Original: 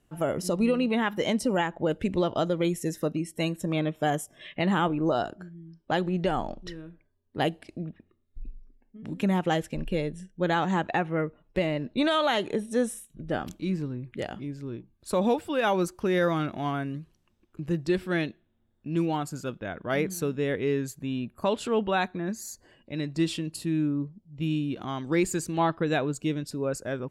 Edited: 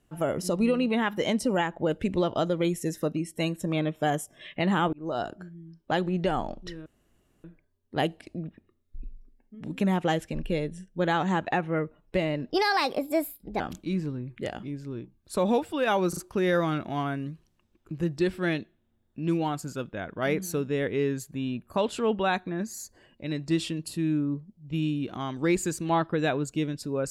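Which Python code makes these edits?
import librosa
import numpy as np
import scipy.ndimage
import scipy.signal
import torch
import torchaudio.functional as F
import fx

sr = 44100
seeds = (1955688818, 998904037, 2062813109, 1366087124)

y = fx.edit(x, sr, fx.fade_in_span(start_s=4.93, length_s=0.36),
    fx.insert_room_tone(at_s=6.86, length_s=0.58),
    fx.speed_span(start_s=11.92, length_s=1.44, speed=1.31),
    fx.stutter(start_s=15.85, slice_s=0.04, count=3), tone=tone)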